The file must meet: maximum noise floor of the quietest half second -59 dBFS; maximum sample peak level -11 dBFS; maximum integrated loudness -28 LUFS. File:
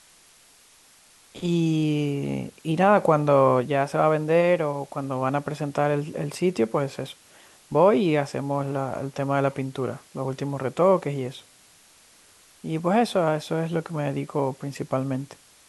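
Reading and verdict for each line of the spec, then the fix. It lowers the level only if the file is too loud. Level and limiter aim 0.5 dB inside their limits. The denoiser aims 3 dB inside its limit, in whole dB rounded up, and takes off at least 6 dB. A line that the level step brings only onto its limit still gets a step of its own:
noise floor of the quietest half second -55 dBFS: fail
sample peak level -5.5 dBFS: fail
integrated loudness -24.5 LUFS: fail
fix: noise reduction 6 dB, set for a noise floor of -55 dBFS; trim -4 dB; peak limiter -11.5 dBFS

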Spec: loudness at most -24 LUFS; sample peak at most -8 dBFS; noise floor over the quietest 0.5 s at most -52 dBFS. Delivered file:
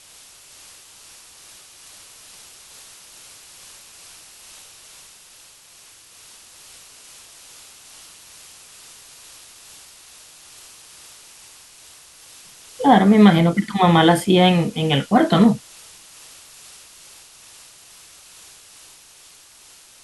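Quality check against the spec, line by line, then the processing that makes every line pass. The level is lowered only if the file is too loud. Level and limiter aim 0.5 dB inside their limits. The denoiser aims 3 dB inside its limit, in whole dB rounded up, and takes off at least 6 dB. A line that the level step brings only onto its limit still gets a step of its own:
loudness -15.5 LUFS: fail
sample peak -2.5 dBFS: fail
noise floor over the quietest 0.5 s -48 dBFS: fail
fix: trim -9 dB

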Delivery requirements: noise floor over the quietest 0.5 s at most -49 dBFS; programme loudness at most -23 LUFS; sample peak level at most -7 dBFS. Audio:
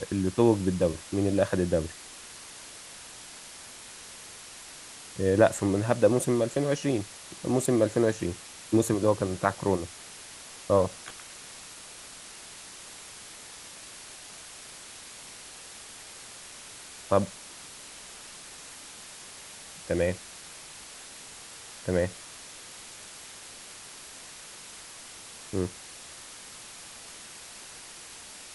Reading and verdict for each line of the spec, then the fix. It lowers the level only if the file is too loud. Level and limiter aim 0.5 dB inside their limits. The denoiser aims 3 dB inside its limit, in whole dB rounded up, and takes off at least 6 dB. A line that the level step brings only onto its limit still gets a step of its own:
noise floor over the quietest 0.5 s -46 dBFS: fail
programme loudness -27.5 LUFS: pass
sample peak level -6.0 dBFS: fail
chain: noise reduction 6 dB, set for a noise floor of -46 dBFS; peak limiter -7.5 dBFS

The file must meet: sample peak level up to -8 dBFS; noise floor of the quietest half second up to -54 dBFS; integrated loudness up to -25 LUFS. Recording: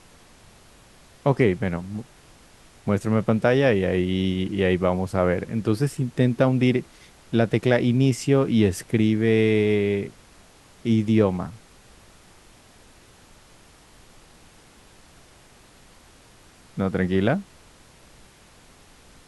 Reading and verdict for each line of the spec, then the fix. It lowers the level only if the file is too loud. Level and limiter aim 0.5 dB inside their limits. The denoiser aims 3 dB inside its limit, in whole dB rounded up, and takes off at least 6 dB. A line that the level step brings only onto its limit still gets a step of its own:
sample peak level -4.5 dBFS: fail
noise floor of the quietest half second -52 dBFS: fail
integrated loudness -22.5 LUFS: fail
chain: trim -3 dB; peak limiter -8.5 dBFS

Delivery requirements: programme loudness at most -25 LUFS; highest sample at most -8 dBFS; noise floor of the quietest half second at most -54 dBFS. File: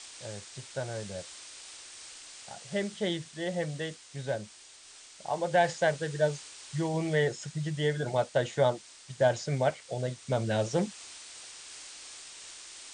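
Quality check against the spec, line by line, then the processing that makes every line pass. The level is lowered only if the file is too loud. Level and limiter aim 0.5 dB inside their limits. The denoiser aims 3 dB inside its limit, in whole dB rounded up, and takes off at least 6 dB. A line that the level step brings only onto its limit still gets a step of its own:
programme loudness -31.5 LUFS: pass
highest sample -13.0 dBFS: pass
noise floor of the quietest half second -53 dBFS: fail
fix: noise reduction 6 dB, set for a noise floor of -53 dBFS

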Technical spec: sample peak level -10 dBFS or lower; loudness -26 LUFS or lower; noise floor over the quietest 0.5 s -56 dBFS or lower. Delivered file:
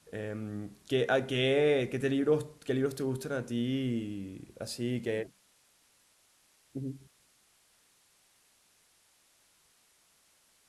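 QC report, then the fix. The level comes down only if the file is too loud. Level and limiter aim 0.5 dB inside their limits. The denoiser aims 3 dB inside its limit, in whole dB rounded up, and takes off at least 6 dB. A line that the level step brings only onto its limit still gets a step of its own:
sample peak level -15.5 dBFS: pass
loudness -32.0 LUFS: pass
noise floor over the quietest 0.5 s -67 dBFS: pass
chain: none needed

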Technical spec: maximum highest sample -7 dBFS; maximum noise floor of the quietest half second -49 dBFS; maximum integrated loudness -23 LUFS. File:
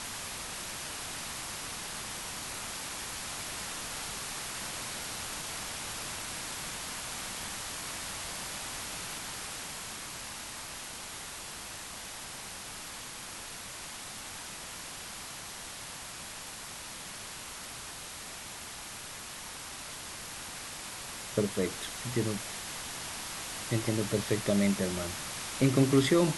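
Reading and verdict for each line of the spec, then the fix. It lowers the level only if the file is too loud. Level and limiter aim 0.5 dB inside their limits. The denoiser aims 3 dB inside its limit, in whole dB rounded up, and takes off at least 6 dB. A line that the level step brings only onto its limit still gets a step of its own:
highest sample -12.0 dBFS: pass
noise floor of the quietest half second -43 dBFS: fail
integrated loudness -35.5 LUFS: pass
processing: noise reduction 9 dB, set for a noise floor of -43 dBFS

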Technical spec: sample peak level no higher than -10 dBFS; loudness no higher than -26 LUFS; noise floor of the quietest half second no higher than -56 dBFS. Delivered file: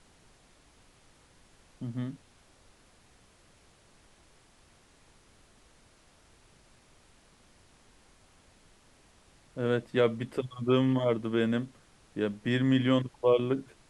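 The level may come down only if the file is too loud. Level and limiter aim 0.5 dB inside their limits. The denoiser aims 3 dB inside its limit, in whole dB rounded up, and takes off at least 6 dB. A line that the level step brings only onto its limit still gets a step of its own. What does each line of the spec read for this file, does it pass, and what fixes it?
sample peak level -12.0 dBFS: pass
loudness -29.0 LUFS: pass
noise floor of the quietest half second -61 dBFS: pass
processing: none needed

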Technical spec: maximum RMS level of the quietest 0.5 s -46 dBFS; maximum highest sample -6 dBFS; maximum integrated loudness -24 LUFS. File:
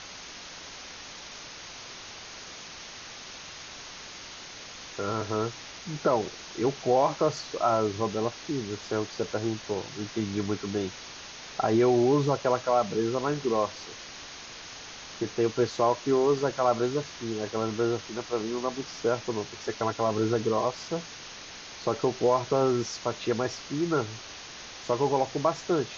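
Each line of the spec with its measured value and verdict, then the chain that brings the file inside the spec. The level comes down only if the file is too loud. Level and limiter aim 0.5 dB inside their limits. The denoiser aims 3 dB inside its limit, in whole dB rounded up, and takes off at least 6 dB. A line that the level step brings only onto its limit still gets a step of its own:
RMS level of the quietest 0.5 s -44 dBFS: fail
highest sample -12.0 dBFS: pass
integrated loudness -28.5 LUFS: pass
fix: noise reduction 6 dB, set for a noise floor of -44 dBFS

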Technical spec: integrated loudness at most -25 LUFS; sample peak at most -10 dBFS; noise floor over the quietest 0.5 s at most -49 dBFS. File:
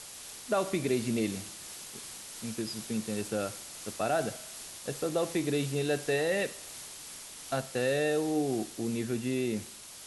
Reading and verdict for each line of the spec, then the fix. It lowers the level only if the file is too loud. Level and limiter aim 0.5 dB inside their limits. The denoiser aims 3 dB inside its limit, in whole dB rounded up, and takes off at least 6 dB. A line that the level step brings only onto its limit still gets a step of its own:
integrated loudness -33.0 LUFS: pass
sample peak -17.0 dBFS: pass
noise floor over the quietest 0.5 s -46 dBFS: fail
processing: noise reduction 6 dB, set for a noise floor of -46 dBFS

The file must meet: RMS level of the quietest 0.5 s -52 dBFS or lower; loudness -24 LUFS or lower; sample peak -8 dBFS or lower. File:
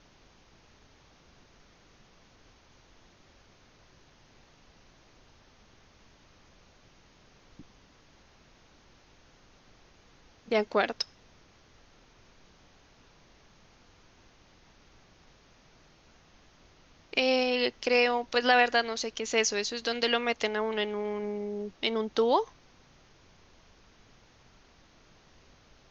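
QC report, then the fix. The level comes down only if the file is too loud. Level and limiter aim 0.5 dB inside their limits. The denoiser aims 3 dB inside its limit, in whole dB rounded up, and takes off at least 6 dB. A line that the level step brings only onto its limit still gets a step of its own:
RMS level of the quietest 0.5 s -60 dBFS: pass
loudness -28.0 LUFS: pass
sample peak -9.0 dBFS: pass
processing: none needed

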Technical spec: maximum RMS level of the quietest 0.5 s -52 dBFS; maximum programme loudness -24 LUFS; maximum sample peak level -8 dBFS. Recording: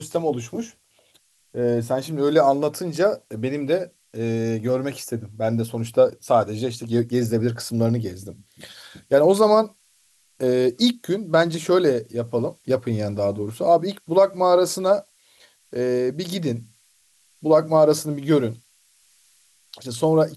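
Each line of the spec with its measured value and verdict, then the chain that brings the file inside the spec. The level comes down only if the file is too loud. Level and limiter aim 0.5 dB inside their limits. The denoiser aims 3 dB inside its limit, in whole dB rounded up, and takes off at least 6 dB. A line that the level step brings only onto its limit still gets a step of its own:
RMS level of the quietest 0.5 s -61 dBFS: pass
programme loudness -21.5 LUFS: fail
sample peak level -6.0 dBFS: fail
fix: trim -3 dB

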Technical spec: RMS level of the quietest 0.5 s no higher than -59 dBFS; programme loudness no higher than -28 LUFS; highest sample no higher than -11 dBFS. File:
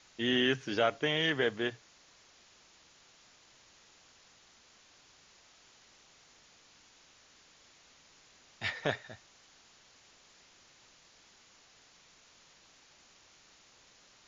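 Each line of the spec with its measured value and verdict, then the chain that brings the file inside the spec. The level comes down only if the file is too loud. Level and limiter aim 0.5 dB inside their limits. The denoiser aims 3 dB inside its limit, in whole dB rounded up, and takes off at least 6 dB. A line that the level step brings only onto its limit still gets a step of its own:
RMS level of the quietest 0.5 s -62 dBFS: pass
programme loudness -31.5 LUFS: pass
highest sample -14.5 dBFS: pass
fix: none needed

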